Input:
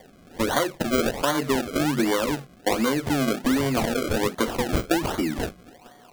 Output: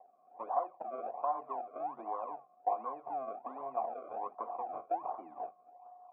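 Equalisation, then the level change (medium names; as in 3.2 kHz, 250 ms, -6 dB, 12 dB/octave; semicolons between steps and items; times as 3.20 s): cascade formant filter a; high-pass 510 Hz 12 dB/octave; tilt EQ -3 dB/octave; 0.0 dB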